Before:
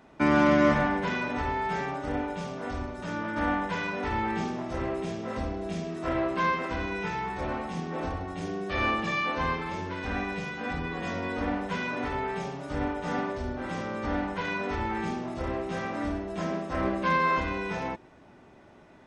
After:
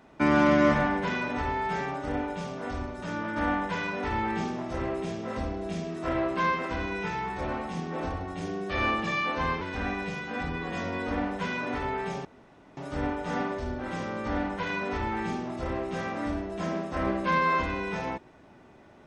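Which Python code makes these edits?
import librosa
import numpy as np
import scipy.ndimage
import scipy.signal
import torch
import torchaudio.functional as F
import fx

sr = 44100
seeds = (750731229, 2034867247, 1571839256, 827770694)

y = fx.edit(x, sr, fx.cut(start_s=9.61, length_s=0.3),
    fx.insert_room_tone(at_s=12.55, length_s=0.52), tone=tone)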